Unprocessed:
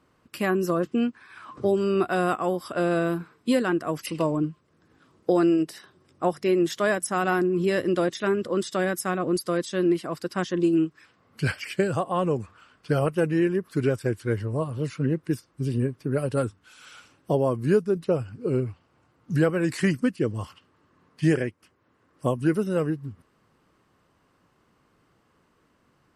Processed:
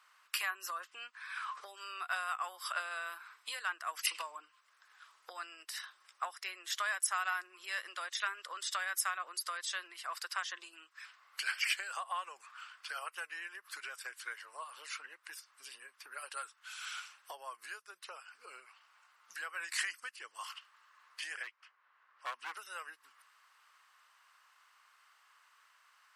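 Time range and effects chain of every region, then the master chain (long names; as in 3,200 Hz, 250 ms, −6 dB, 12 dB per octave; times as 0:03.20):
0:21.43–0:22.57: low-pass filter 4,300 Hz + hard clipping −22 dBFS + one half of a high-frequency compander decoder only
whole clip: downward compressor 10 to 1, threshold −30 dBFS; high-pass filter 1,100 Hz 24 dB per octave; level +5 dB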